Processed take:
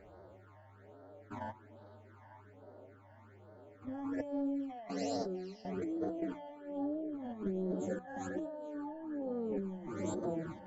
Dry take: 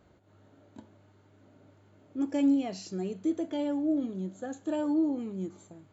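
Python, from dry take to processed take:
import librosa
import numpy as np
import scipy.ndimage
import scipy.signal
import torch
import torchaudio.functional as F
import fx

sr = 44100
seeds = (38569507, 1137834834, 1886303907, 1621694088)

y = fx.spec_steps(x, sr, hold_ms=50)
y = fx.level_steps(y, sr, step_db=19)
y = fx.rev_spring(y, sr, rt60_s=3.1, pass_ms=(54,), chirp_ms=70, drr_db=16.0)
y = fx.stretch_vocoder(y, sr, factor=1.8)
y = fx.band_shelf(y, sr, hz=930.0, db=14.0, octaves=2.8)
y = fx.over_compress(y, sr, threshold_db=-42.0, ratio=-1.0)
y = fx.low_shelf(y, sr, hz=120.0, db=8.0)
y = fx.hum_notches(y, sr, base_hz=60, count=3)
y = fx.echo_stepped(y, sr, ms=450, hz=3500.0, octaves=-1.4, feedback_pct=70, wet_db=-10)
y = fx.phaser_stages(y, sr, stages=12, low_hz=400.0, high_hz=2500.0, hz=1.2, feedback_pct=20)
y = F.gain(torch.from_numpy(y), 4.0).numpy()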